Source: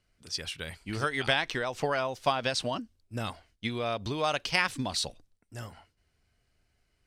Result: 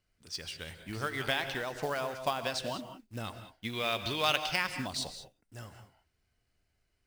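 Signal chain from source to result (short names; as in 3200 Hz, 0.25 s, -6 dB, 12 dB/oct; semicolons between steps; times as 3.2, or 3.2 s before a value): 3.73–4.36 bell 2900 Hz +12 dB 2.1 oct; short-mantissa float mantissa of 2-bit; non-linear reverb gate 0.22 s rising, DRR 9 dB; gain -5 dB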